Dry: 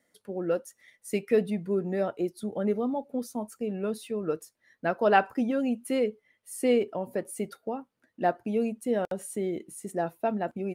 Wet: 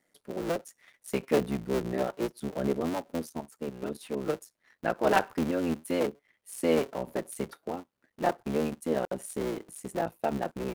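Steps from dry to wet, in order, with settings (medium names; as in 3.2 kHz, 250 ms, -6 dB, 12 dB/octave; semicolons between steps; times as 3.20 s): cycle switcher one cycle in 3, muted; 3.29–4.01 s: level held to a coarse grid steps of 11 dB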